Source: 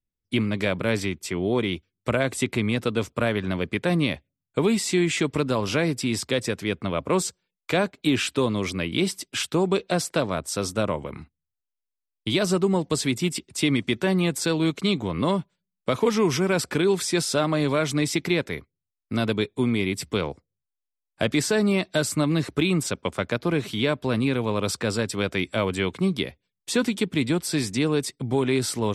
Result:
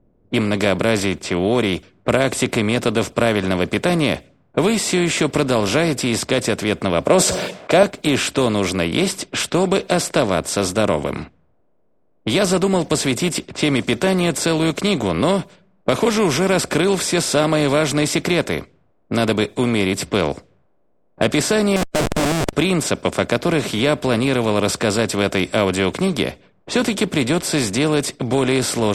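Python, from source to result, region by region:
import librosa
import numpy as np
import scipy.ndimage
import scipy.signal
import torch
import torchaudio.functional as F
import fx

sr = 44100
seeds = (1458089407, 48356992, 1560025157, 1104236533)

y = fx.chain(x, sr, fx.highpass(hz=110.0, slope=12),
    fx.peak_eq(hz=620.0, db=13.0, octaves=0.46),
    fx.sustainer(db_per_s=46.0), at=(7.06, 7.83))
y = fx.chain(y, sr, fx.median_filter(points=25),
    fx.peak_eq(hz=3800.0, db=-7.0, octaves=0.42),
    fx.schmitt(flips_db=-35.0), at=(21.76, 22.53))
y = fx.bin_compress(y, sr, power=0.6)
y = fx.env_lowpass(y, sr, base_hz=570.0, full_db=-19.0)
y = F.gain(torch.from_numpy(y), 1.5).numpy()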